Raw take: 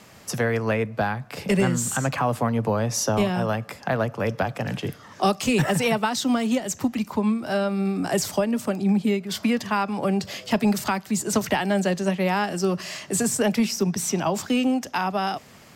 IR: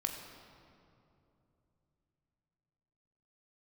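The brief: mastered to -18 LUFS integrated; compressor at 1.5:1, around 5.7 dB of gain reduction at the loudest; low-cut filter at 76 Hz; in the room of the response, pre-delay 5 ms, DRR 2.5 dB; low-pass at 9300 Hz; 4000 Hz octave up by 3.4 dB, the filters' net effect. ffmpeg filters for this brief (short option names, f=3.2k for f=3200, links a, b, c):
-filter_complex "[0:a]highpass=76,lowpass=9.3k,equalizer=f=4k:t=o:g=5,acompressor=threshold=-33dB:ratio=1.5,asplit=2[a][b];[1:a]atrim=start_sample=2205,adelay=5[c];[b][c]afir=irnorm=-1:irlink=0,volume=-4.5dB[d];[a][d]amix=inputs=2:normalize=0,volume=8.5dB"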